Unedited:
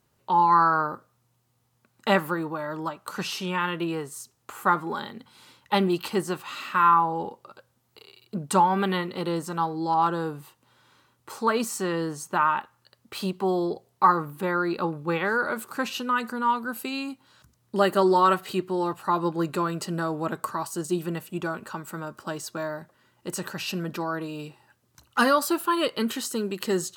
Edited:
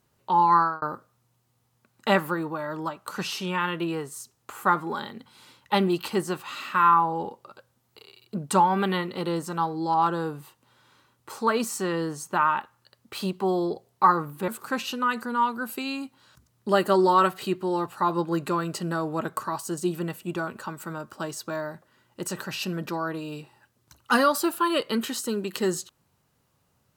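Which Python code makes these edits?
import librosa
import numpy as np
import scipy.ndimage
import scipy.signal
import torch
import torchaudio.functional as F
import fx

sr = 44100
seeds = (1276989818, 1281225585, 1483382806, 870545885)

y = fx.edit(x, sr, fx.fade_out_span(start_s=0.56, length_s=0.26),
    fx.cut(start_s=14.48, length_s=1.07), tone=tone)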